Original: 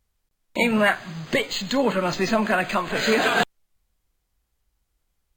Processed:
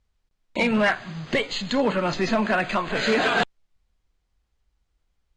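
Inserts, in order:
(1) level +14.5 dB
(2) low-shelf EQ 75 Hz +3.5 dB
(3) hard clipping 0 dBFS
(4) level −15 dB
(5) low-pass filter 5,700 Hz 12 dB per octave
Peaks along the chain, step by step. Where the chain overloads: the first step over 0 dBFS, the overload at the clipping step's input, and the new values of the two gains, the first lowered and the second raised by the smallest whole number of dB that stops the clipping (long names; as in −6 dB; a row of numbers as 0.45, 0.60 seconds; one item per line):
+7.5, +7.5, 0.0, −15.0, −14.5 dBFS
step 1, 7.5 dB
step 1 +6.5 dB, step 4 −7 dB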